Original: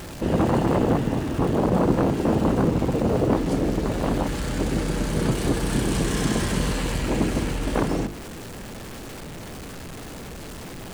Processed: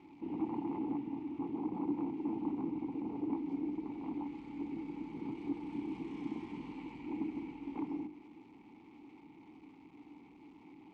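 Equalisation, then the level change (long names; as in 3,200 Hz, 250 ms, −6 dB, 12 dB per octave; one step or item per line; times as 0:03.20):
formant filter u
high-frequency loss of the air 64 metres
−7.0 dB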